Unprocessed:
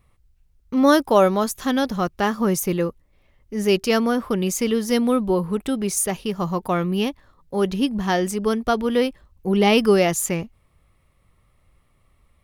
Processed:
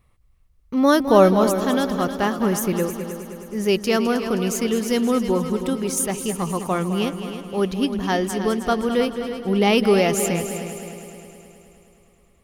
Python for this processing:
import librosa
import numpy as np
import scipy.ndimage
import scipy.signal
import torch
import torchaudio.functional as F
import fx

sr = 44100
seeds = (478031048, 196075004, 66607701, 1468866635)

y = fx.low_shelf(x, sr, hz=480.0, db=7.0, at=(1.0, 1.5))
y = fx.echo_heads(y, sr, ms=105, heads='second and third', feedback_pct=56, wet_db=-11.0)
y = y * librosa.db_to_amplitude(-1.0)